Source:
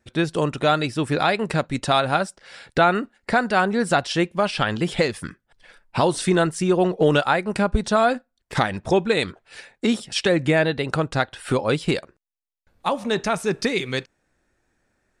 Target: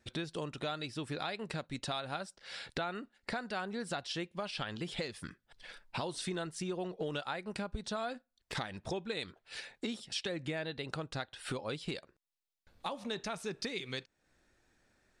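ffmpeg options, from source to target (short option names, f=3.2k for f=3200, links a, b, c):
-af "equalizer=f=4k:w=1.1:g=6.5,acompressor=threshold=-38dB:ratio=3,volume=-3dB"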